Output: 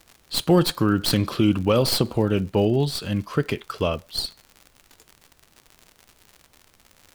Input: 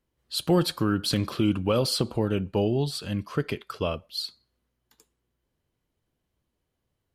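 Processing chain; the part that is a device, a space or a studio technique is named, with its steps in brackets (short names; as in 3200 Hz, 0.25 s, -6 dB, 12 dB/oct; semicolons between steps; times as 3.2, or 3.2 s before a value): record under a worn stylus (tracing distortion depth 0.08 ms; crackle 88/s -38 dBFS; pink noise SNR 37 dB); gain +4.5 dB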